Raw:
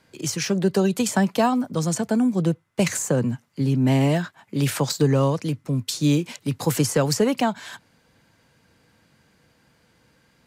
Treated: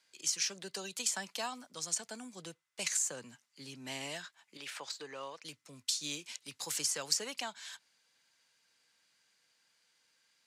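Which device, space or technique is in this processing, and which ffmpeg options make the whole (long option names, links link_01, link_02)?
piezo pickup straight into a mixer: -filter_complex "[0:a]asettb=1/sr,asplit=3[link_01][link_02][link_03];[link_01]atrim=end=4.574[link_04];[link_02]atrim=start=4.57:end=5.45,asetpts=PTS-STARTPTS,afade=type=in:duration=0.004:curve=qsin,afade=type=out:start_time=0.876:duration=0.004:curve=qsin,bass=frequency=250:gain=-13,treble=frequency=4000:gain=-14[link_05];[link_03]atrim=start=5.446[link_06];[link_04][link_05]acrossfade=duration=0.004:curve1=hsin:curve2=qsin[link_07];[link_07][link_06]acrossfade=duration=0.004:curve1=qsin:curve2=hsin,lowpass=6600,aderivative"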